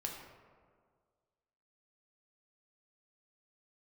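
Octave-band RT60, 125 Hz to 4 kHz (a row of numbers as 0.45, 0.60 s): 1.8, 1.8, 1.9, 1.7, 1.3, 0.75 s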